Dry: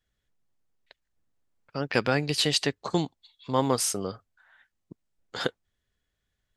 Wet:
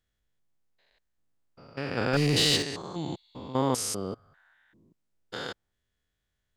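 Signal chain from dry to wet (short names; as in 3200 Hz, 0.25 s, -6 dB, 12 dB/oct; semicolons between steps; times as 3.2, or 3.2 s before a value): stepped spectrum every 0.2 s; 2.13–2.63 sample leveller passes 2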